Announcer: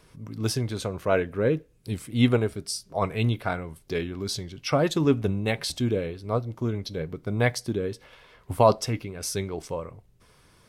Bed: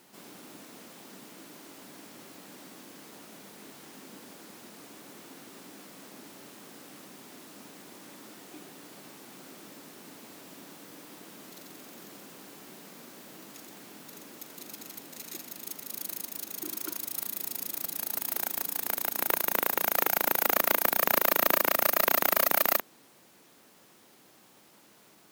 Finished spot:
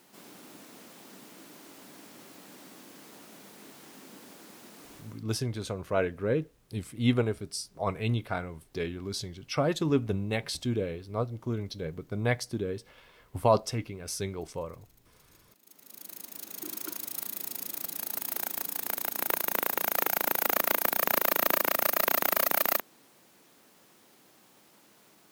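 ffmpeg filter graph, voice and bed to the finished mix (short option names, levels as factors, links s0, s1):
-filter_complex "[0:a]adelay=4850,volume=0.596[s0];[1:a]volume=8.41,afade=t=out:st=4.94:d=0.3:silence=0.1,afade=t=in:st=15.62:d=1.07:silence=0.1[s1];[s0][s1]amix=inputs=2:normalize=0"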